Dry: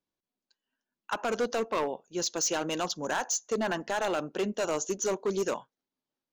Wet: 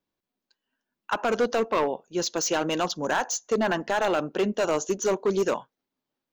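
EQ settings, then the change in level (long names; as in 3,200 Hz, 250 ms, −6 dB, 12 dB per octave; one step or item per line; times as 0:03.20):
parametric band 9,300 Hz −7.5 dB 1.5 octaves
+5.5 dB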